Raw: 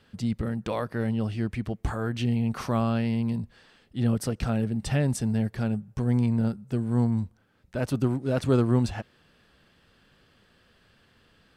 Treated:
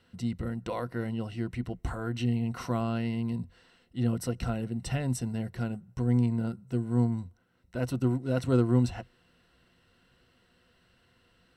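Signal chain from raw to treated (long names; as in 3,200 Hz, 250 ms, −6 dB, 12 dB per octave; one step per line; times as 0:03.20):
EQ curve with evenly spaced ripples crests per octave 2, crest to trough 9 dB
level −5 dB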